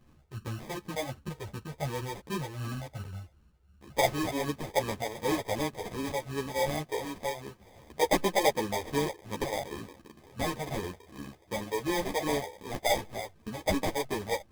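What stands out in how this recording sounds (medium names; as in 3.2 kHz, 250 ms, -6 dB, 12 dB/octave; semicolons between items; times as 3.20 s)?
phasing stages 4, 2.7 Hz, lowest notch 200–1100 Hz; aliases and images of a low sample rate 1.4 kHz, jitter 0%; a shimmering, thickened sound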